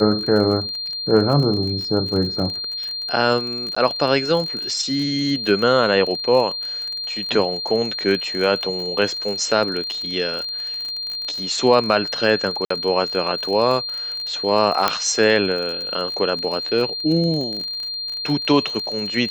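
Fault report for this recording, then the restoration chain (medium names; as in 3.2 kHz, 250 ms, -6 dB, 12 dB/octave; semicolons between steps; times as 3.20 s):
crackle 36 per s -26 dBFS
whine 4.2 kHz -25 dBFS
3.75–3.77 s: dropout 15 ms
12.65–12.70 s: dropout 54 ms
14.88 s: pop -2 dBFS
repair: de-click; band-stop 4.2 kHz, Q 30; interpolate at 3.75 s, 15 ms; interpolate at 12.65 s, 54 ms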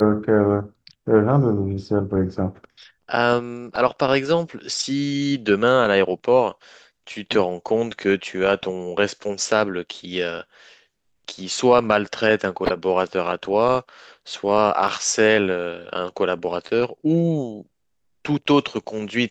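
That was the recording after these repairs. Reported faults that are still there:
14.88 s: pop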